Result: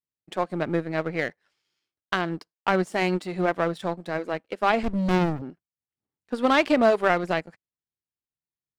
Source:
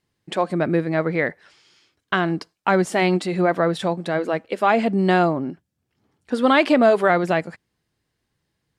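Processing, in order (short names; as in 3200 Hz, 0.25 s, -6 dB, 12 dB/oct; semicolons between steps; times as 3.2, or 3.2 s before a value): power-law curve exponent 1.4; 4.83–5.42 running maximum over 65 samples; gain -1.5 dB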